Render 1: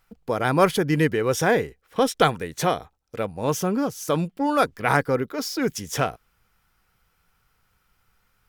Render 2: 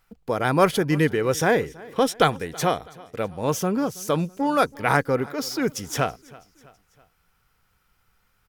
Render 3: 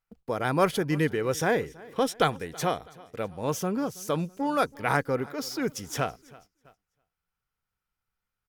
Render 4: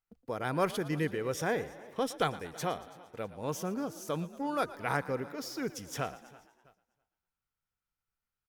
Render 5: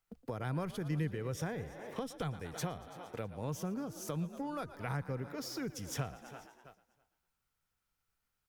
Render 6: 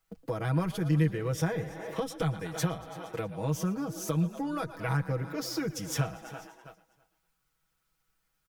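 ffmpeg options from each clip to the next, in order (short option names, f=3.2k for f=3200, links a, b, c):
-af "aecho=1:1:327|654|981:0.075|0.0375|0.0187"
-af "agate=range=-15dB:threshold=-50dB:ratio=16:detection=peak,volume=-5dB"
-filter_complex "[0:a]asplit=6[a][b][c][d][e][f];[b]adelay=115,afreqshift=47,volume=-17dB[g];[c]adelay=230,afreqshift=94,volume=-22dB[h];[d]adelay=345,afreqshift=141,volume=-27.1dB[i];[e]adelay=460,afreqshift=188,volume=-32.1dB[j];[f]adelay=575,afreqshift=235,volume=-37.1dB[k];[a][g][h][i][j][k]amix=inputs=6:normalize=0,volume=-6.5dB"
-filter_complex "[0:a]acrossover=split=150[a][b];[b]acompressor=threshold=-46dB:ratio=5[c];[a][c]amix=inputs=2:normalize=0,volume=6dB"
-af "aecho=1:1:6.2:0.85,volume=4.5dB"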